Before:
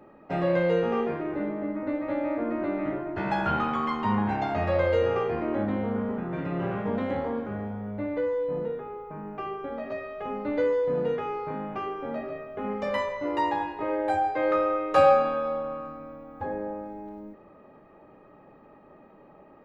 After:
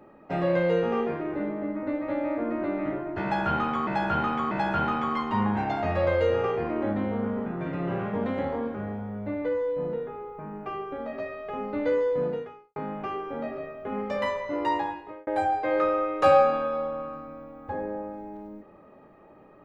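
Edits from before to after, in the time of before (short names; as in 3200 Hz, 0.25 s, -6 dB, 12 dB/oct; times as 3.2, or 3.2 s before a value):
3.23–3.87 loop, 3 plays
10.96–11.48 fade out quadratic
13.47–13.99 fade out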